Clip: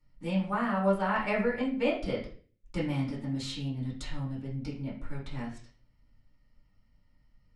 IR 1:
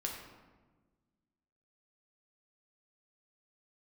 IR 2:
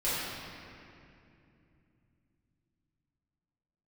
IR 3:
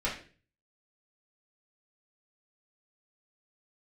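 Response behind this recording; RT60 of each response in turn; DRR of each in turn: 3; 1.3 s, 2.7 s, 0.40 s; -0.5 dB, -12.5 dB, -7.5 dB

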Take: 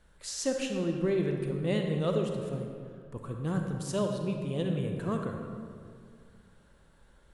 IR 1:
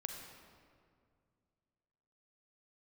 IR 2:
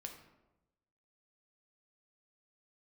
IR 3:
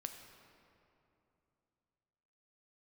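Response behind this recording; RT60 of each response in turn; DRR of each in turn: 1; 2.2 s, 1.0 s, 2.9 s; 3.0 dB, 3.0 dB, 5.0 dB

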